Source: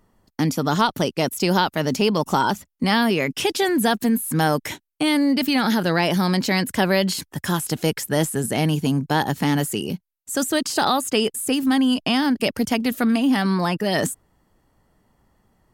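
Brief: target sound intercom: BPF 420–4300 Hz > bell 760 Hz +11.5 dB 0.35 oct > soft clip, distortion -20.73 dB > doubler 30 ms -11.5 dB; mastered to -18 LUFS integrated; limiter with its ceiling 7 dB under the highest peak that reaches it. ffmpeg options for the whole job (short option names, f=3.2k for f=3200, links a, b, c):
-filter_complex "[0:a]alimiter=limit=-11.5dB:level=0:latency=1,highpass=420,lowpass=4.3k,equalizer=f=760:t=o:w=0.35:g=11.5,asoftclip=threshold=-10dB,asplit=2[a][b];[b]adelay=30,volume=-11.5dB[c];[a][c]amix=inputs=2:normalize=0,volume=6dB"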